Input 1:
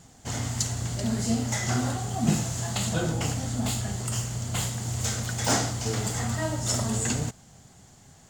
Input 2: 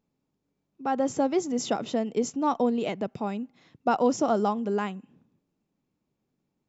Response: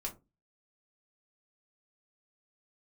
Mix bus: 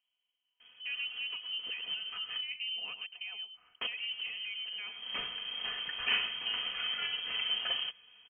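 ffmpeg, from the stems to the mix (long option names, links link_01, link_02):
-filter_complex "[0:a]acrusher=bits=2:mode=log:mix=0:aa=0.000001,adelay=600,volume=-6dB,asplit=3[link_01][link_02][link_03];[link_01]atrim=end=2.43,asetpts=PTS-STARTPTS,afade=type=out:start_time=2.426:duration=0.004:curve=hsin[link_04];[link_02]atrim=start=2.43:end=3.81,asetpts=PTS-STARTPTS,volume=0[link_05];[link_03]atrim=start=3.81,asetpts=PTS-STARTPTS,afade=type=in:duration=0.004:curve=hsin[link_06];[link_04][link_05][link_06]concat=n=3:v=0:a=1[link_07];[1:a]equalizer=frequency=96:width_type=o:width=1.7:gain=-9,alimiter=limit=-21.5dB:level=0:latency=1:release=17,acompressor=threshold=-44dB:ratio=1.5,volume=-5.5dB,asplit=3[link_08][link_09][link_10];[link_09]volume=-9.5dB[link_11];[link_10]apad=whole_len=392080[link_12];[link_07][link_12]sidechaincompress=threshold=-57dB:ratio=8:attack=46:release=153[link_13];[link_11]aecho=0:1:108:1[link_14];[link_13][link_08][link_14]amix=inputs=3:normalize=0,aecho=1:1:3.9:0.56,lowpass=frequency=2800:width_type=q:width=0.5098,lowpass=frequency=2800:width_type=q:width=0.6013,lowpass=frequency=2800:width_type=q:width=0.9,lowpass=frequency=2800:width_type=q:width=2.563,afreqshift=-3300"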